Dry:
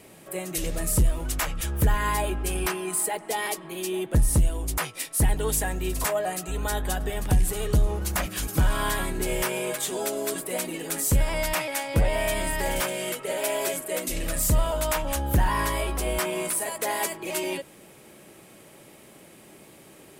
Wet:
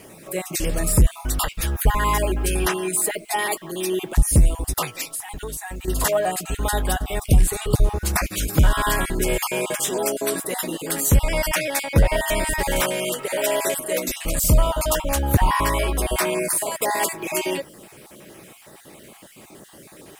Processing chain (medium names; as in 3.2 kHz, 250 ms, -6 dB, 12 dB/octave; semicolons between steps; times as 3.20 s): random holes in the spectrogram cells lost 26%; 5.08–5.88 s: compression 6:1, threshold -35 dBFS, peak gain reduction 12.5 dB; bit crusher 10-bit; trim +6 dB